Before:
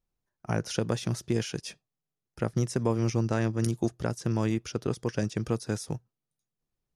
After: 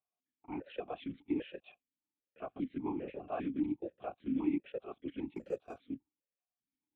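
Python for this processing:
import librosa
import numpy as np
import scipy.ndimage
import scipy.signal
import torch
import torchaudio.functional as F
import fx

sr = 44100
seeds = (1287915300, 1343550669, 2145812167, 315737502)

y = fx.lpc_vocoder(x, sr, seeds[0], excitation='whisper', order=10)
y = fx.resample_bad(y, sr, factor=6, down='none', up='hold', at=(5.36, 5.79))
y = fx.vowel_held(y, sr, hz=5.0)
y = y * librosa.db_to_amplitude(2.0)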